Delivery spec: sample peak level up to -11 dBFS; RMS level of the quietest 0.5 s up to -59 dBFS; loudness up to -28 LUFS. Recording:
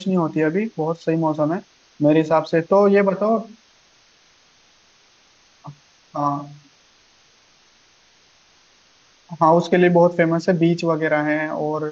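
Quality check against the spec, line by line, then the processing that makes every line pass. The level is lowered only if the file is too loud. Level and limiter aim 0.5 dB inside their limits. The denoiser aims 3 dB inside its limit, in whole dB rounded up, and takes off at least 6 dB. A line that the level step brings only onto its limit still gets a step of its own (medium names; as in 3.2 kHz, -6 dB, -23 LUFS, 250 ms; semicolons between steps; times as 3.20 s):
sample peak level -4.0 dBFS: fail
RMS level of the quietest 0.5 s -56 dBFS: fail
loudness -19.0 LUFS: fail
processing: trim -9.5 dB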